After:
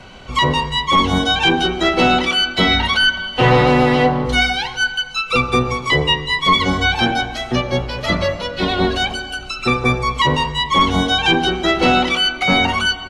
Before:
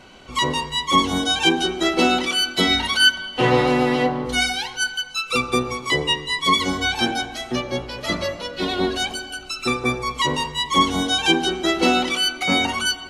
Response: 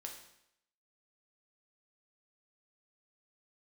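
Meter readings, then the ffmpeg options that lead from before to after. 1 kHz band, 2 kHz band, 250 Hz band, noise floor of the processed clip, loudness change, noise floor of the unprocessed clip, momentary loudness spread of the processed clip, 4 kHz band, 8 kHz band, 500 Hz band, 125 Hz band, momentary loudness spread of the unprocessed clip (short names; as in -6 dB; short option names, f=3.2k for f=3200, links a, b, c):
+5.5 dB, +5.0 dB, +3.5 dB, -31 dBFS, +4.0 dB, -37 dBFS, 7 LU, +3.0 dB, -4.0 dB, +4.5 dB, +9.5 dB, 8 LU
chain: -filter_complex "[0:a]highshelf=f=9k:g=-11.5,apsyclip=12.5dB,acrossover=split=300|1600|4300[a][b][c][d];[a]aecho=1:1:1.4:0.95[e];[d]acompressor=threshold=-30dB:ratio=6[f];[e][b][c][f]amix=inputs=4:normalize=0,volume=-6dB"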